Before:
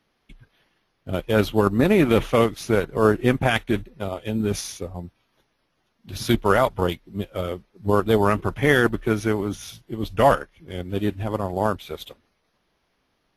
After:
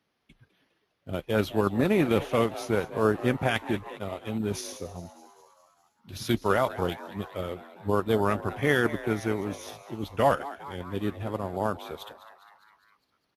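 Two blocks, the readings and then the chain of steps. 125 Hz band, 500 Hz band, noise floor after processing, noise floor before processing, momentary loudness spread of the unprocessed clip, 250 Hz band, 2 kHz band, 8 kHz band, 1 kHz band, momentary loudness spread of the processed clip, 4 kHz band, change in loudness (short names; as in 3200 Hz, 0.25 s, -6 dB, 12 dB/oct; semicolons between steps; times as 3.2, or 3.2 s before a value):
-6.5 dB, -6.0 dB, -75 dBFS, -71 dBFS, 15 LU, -6.0 dB, -6.0 dB, -6.0 dB, -5.5 dB, 14 LU, -6.0 dB, -6.0 dB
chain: HPF 67 Hz; frequency-shifting echo 0.203 s, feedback 61%, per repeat +150 Hz, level -16 dB; gain -6 dB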